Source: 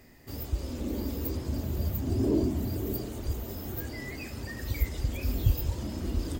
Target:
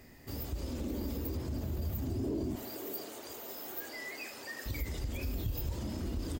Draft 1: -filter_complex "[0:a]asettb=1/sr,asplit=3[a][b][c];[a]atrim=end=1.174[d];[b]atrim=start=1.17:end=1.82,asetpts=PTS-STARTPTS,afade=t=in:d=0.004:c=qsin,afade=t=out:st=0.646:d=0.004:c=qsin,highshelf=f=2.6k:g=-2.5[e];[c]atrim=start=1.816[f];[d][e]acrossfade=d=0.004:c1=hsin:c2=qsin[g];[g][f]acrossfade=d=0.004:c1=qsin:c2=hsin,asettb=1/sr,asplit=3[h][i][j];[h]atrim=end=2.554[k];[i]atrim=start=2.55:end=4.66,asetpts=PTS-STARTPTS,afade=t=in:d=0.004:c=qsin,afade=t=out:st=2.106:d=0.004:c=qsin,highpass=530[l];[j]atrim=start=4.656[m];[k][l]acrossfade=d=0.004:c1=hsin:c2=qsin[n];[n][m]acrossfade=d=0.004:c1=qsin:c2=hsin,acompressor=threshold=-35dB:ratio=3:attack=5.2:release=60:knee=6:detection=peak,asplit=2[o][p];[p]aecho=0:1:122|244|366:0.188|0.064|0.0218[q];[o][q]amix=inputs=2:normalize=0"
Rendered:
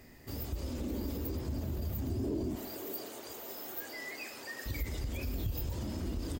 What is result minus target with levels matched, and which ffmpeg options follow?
echo 47 ms late
-filter_complex "[0:a]asettb=1/sr,asplit=3[a][b][c];[a]atrim=end=1.174[d];[b]atrim=start=1.17:end=1.82,asetpts=PTS-STARTPTS,afade=t=in:d=0.004:c=qsin,afade=t=out:st=0.646:d=0.004:c=qsin,highshelf=f=2.6k:g=-2.5[e];[c]atrim=start=1.816[f];[d][e]acrossfade=d=0.004:c1=hsin:c2=qsin[g];[g][f]acrossfade=d=0.004:c1=qsin:c2=hsin,asettb=1/sr,asplit=3[h][i][j];[h]atrim=end=2.554[k];[i]atrim=start=2.55:end=4.66,asetpts=PTS-STARTPTS,afade=t=in:d=0.004:c=qsin,afade=t=out:st=2.106:d=0.004:c=qsin,highpass=530[l];[j]atrim=start=4.656[m];[k][l]acrossfade=d=0.004:c1=hsin:c2=qsin[n];[n][m]acrossfade=d=0.004:c1=qsin:c2=hsin,acompressor=threshold=-35dB:ratio=3:attack=5.2:release=60:knee=6:detection=peak,asplit=2[o][p];[p]aecho=0:1:75|150|225:0.188|0.064|0.0218[q];[o][q]amix=inputs=2:normalize=0"

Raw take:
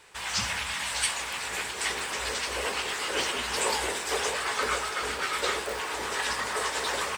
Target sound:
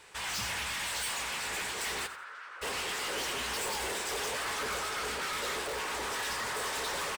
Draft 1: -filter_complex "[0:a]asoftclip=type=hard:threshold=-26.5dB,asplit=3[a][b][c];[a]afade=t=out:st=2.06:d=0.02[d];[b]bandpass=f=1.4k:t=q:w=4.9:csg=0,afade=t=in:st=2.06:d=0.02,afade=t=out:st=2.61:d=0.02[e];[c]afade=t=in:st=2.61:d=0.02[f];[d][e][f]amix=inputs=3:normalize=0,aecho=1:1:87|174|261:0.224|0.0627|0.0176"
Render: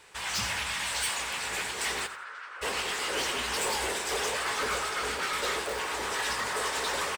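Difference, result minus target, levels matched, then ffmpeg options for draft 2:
hard clip: distortion -6 dB
-filter_complex "[0:a]asoftclip=type=hard:threshold=-33dB,asplit=3[a][b][c];[a]afade=t=out:st=2.06:d=0.02[d];[b]bandpass=f=1.4k:t=q:w=4.9:csg=0,afade=t=in:st=2.06:d=0.02,afade=t=out:st=2.61:d=0.02[e];[c]afade=t=in:st=2.61:d=0.02[f];[d][e][f]amix=inputs=3:normalize=0,aecho=1:1:87|174|261:0.224|0.0627|0.0176"

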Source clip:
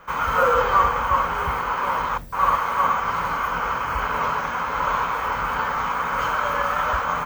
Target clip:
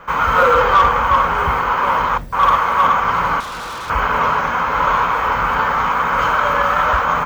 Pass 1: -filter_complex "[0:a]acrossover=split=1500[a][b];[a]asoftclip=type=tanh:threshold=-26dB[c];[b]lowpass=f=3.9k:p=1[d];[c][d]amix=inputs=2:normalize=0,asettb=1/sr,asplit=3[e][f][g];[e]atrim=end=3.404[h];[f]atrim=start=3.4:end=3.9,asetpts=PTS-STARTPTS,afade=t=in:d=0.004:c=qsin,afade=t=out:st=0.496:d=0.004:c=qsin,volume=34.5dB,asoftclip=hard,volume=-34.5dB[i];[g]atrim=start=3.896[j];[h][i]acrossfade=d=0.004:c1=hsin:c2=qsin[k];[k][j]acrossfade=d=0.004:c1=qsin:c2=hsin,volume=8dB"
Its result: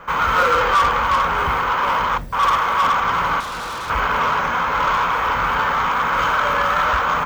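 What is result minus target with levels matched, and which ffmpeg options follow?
soft clip: distortion +8 dB
-filter_complex "[0:a]acrossover=split=1500[a][b];[a]asoftclip=type=tanh:threshold=-16.5dB[c];[b]lowpass=f=3.9k:p=1[d];[c][d]amix=inputs=2:normalize=0,asettb=1/sr,asplit=3[e][f][g];[e]atrim=end=3.404[h];[f]atrim=start=3.4:end=3.9,asetpts=PTS-STARTPTS,afade=t=in:d=0.004:c=qsin,afade=t=out:st=0.496:d=0.004:c=qsin,volume=34.5dB,asoftclip=hard,volume=-34.5dB[i];[g]atrim=start=3.896[j];[h][i]acrossfade=d=0.004:c1=hsin:c2=qsin[k];[k][j]acrossfade=d=0.004:c1=qsin:c2=hsin,volume=8dB"

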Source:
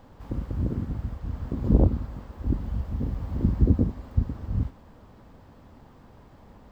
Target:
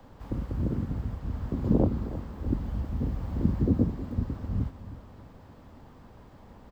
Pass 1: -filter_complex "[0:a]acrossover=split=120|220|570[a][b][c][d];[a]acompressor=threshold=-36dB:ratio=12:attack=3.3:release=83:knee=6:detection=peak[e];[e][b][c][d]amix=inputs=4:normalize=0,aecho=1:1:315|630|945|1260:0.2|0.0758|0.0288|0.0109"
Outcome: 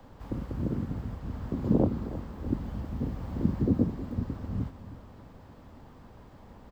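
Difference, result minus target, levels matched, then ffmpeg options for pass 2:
compressor: peak gain reduction +8 dB
-filter_complex "[0:a]acrossover=split=120|220|570[a][b][c][d];[a]acompressor=threshold=-27dB:ratio=12:attack=3.3:release=83:knee=6:detection=peak[e];[e][b][c][d]amix=inputs=4:normalize=0,aecho=1:1:315|630|945|1260:0.2|0.0758|0.0288|0.0109"

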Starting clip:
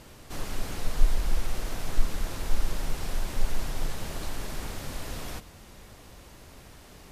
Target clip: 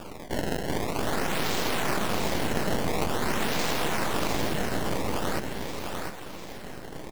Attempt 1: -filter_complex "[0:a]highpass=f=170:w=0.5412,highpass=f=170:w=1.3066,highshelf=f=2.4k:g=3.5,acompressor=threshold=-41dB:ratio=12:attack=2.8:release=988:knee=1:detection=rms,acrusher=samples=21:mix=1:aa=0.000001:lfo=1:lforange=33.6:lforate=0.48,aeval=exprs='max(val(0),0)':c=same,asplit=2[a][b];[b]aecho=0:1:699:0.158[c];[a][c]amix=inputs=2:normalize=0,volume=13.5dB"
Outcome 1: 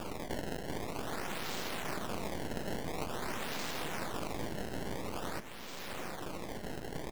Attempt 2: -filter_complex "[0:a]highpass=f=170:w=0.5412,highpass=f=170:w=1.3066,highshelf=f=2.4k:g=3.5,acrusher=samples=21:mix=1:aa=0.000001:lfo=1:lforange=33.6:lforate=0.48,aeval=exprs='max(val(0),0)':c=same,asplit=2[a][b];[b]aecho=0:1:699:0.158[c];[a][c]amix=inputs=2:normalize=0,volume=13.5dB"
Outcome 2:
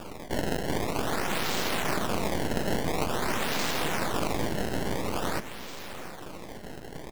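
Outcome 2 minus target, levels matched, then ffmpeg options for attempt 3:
echo-to-direct -11.5 dB
-filter_complex "[0:a]highpass=f=170:w=0.5412,highpass=f=170:w=1.3066,highshelf=f=2.4k:g=3.5,acrusher=samples=21:mix=1:aa=0.000001:lfo=1:lforange=33.6:lforate=0.48,aeval=exprs='max(val(0),0)':c=same,asplit=2[a][b];[b]aecho=0:1:699:0.596[c];[a][c]amix=inputs=2:normalize=0,volume=13.5dB"

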